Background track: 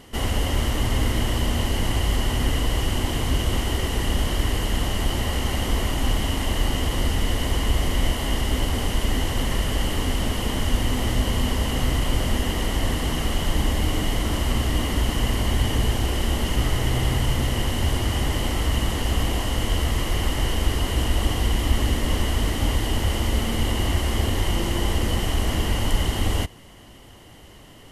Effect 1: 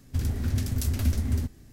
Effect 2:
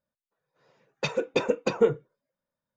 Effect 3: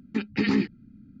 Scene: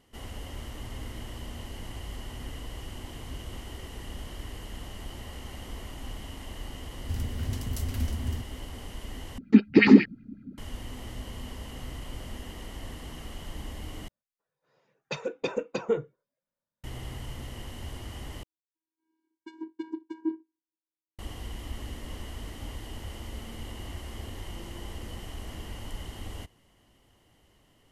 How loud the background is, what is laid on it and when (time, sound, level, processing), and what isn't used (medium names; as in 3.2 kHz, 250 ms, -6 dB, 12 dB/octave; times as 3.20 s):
background track -17 dB
6.95 s: add 1 -6 dB
9.38 s: replace with 3 -0.5 dB + sweeping bell 5.4 Hz 220–2500 Hz +16 dB
14.08 s: replace with 2 -5.5 dB
18.43 s: replace with 2 -10 dB + vocoder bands 8, square 321 Hz